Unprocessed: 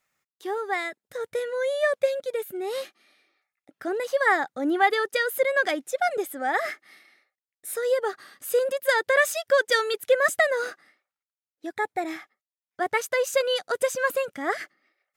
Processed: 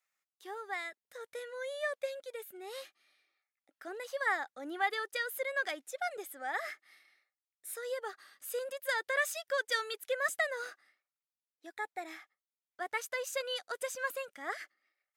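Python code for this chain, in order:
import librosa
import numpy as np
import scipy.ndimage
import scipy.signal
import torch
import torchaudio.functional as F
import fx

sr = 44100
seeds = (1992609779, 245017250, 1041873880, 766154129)

y = fx.highpass(x, sr, hz=900.0, slope=6)
y = y * librosa.db_to_amplitude(-8.5)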